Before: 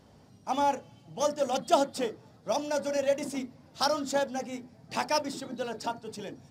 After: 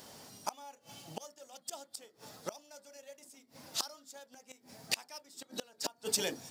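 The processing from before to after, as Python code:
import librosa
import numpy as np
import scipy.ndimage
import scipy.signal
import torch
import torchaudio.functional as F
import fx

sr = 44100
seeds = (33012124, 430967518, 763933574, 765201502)

y = fx.gate_flip(x, sr, shuts_db=-28.0, range_db=-30)
y = fx.riaa(y, sr, side='recording')
y = F.gain(torch.from_numpy(y), 6.5).numpy()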